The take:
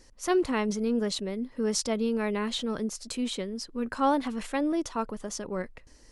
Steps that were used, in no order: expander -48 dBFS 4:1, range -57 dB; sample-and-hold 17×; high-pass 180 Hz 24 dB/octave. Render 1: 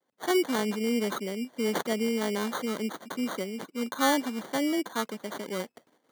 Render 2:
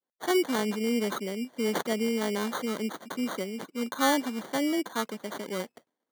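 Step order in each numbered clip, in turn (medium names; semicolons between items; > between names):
expander > sample-and-hold > high-pass; sample-and-hold > high-pass > expander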